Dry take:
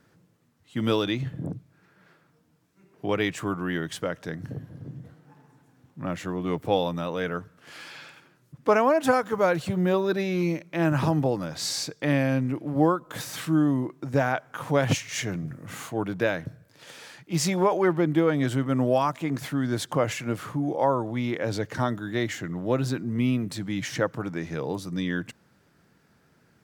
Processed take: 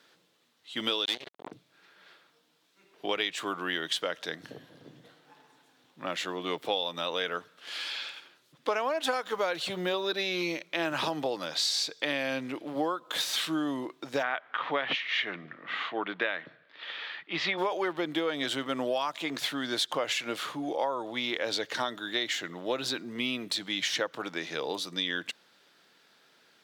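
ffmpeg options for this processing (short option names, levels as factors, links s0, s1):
-filter_complex "[0:a]asettb=1/sr,asplit=3[s0][s1][s2];[s0]atrim=end=1.054[s3];[s1]atrim=start=1.05:end=1.52,asetpts=PTS-STARTPTS,afade=t=in:d=0.004:c=qsin,afade=t=out:st=0.466:d=0.004:c=qsin,acrusher=bits=3:mix=0:aa=0.5[s4];[s2]atrim=start=1.516[s5];[s3][s4]acrossfade=d=0.004:c1=hsin:c2=qsin[s6];[s6][s5]acrossfade=d=0.004:c1=qsin:c2=hsin,asplit=3[s7][s8][s9];[s7]afade=t=out:st=14.22:d=0.02[s10];[s8]highpass=150,equalizer=f=510:t=q:w=4:g=-3,equalizer=f=1200:t=q:w=4:g=6,equalizer=f=1900:t=q:w=4:g=7,lowpass=f=3300:w=0.5412,lowpass=f=3300:w=1.3066,afade=t=in:st=14.22:d=0.02,afade=t=out:st=17.57:d=0.02[s11];[s9]afade=t=in:st=17.57:d=0.02[s12];[s10][s11][s12]amix=inputs=3:normalize=0,highpass=410,equalizer=f=3600:t=o:w=1:g=13.5,acompressor=threshold=0.0501:ratio=6"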